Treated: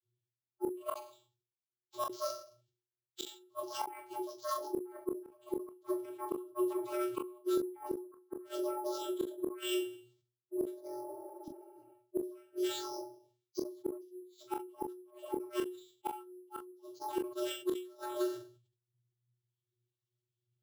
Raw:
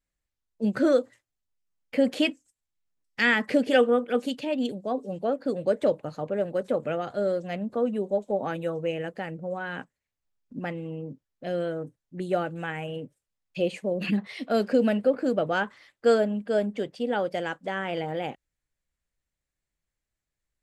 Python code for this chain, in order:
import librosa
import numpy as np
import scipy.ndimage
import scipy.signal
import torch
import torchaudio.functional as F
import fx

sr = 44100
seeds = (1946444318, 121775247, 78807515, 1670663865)

p1 = fx.pitch_heads(x, sr, semitones=11.0)
p2 = fx.dereverb_blind(p1, sr, rt60_s=1.4)
p3 = fx.hpss(p2, sr, part='percussive', gain_db=-17)
p4 = fx.band_shelf(p3, sr, hz=1100.0, db=-13.5, octaves=2.6)
p5 = fx.rider(p4, sr, range_db=4, speed_s=2.0)
p6 = p4 + (p5 * librosa.db_to_amplitude(3.0))
p7 = fx.rev_schroeder(p6, sr, rt60_s=0.3, comb_ms=31, drr_db=14.5)
p8 = fx.vocoder(p7, sr, bands=32, carrier='square', carrier_hz=121.0)
p9 = fx.gate_flip(p8, sr, shuts_db=-30.0, range_db=-38)
p10 = p9 + fx.room_early_taps(p9, sr, ms=(27, 41), db=(-8.5, -12.0), dry=0)
p11 = fx.spec_repair(p10, sr, seeds[0], start_s=11.11, length_s=0.79, low_hz=330.0, high_hz=5600.0, source='both')
p12 = np.repeat(p11[::4], 4)[:len(p11)]
p13 = fx.sustainer(p12, sr, db_per_s=110.0)
y = p13 * librosa.db_to_amplitude(6.0)